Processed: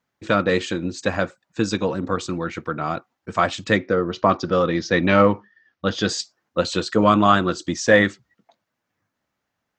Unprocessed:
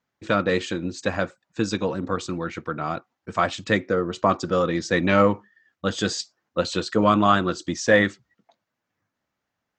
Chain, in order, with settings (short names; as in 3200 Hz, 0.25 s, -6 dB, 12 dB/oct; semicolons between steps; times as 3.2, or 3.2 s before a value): 3.76–6.09 steep low-pass 6100 Hz 48 dB/oct; gain +2.5 dB